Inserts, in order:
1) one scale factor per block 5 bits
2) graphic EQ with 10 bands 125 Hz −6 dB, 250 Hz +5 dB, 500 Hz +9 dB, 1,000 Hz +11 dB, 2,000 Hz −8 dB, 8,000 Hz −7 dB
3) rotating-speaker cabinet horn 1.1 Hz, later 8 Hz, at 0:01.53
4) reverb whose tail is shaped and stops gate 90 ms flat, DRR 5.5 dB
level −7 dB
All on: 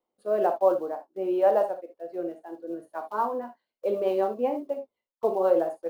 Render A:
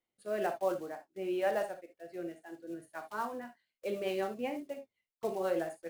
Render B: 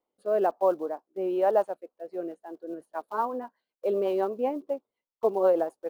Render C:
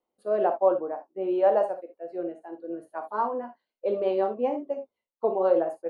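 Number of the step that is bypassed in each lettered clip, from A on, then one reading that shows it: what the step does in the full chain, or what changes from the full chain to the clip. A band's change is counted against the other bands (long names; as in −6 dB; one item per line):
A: 2, 2 kHz band +12.0 dB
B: 4, change in integrated loudness −1.0 LU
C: 1, distortion level −23 dB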